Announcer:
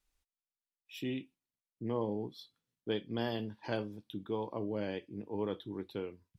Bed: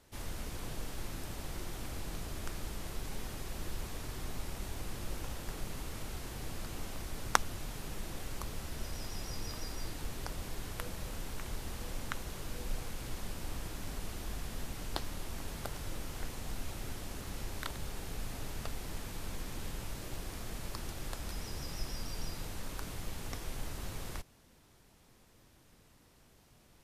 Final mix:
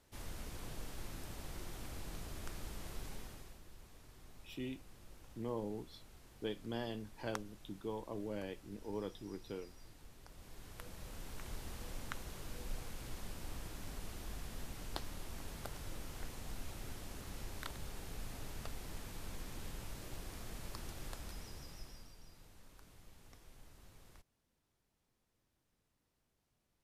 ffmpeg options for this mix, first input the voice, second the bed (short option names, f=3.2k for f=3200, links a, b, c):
-filter_complex "[0:a]adelay=3550,volume=-6dB[a];[1:a]volume=6.5dB,afade=t=out:st=3.03:d=0.58:silence=0.251189,afade=t=in:st=10.25:d=1.28:silence=0.251189,afade=t=out:st=21.06:d=1.11:silence=0.211349[b];[a][b]amix=inputs=2:normalize=0"